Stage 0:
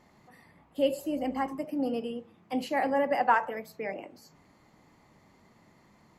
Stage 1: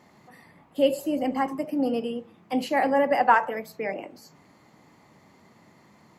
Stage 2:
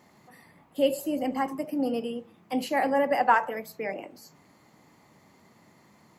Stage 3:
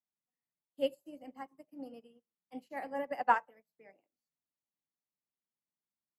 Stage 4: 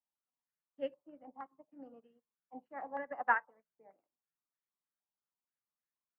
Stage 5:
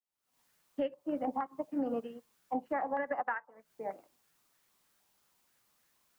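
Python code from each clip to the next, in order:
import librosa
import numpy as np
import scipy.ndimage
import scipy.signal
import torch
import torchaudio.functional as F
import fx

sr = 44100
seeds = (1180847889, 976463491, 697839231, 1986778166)

y1 = scipy.signal.sosfilt(scipy.signal.butter(2, 98.0, 'highpass', fs=sr, output='sos'), x)
y1 = F.gain(torch.from_numpy(y1), 5.0).numpy()
y2 = fx.high_shelf(y1, sr, hz=7800.0, db=7.5)
y2 = F.gain(torch.from_numpy(y2), -2.5).numpy()
y3 = fx.upward_expand(y2, sr, threshold_db=-45.0, expansion=2.5)
y3 = F.gain(torch.from_numpy(y3), -4.0).numpy()
y4 = fx.filter_held_lowpass(y3, sr, hz=6.4, low_hz=900.0, high_hz=1800.0)
y4 = F.gain(torch.from_numpy(y4), -7.0).numpy()
y5 = fx.recorder_agc(y4, sr, target_db=-18.5, rise_db_per_s=77.0, max_gain_db=30)
y5 = F.gain(torch.from_numpy(y5), -7.5).numpy()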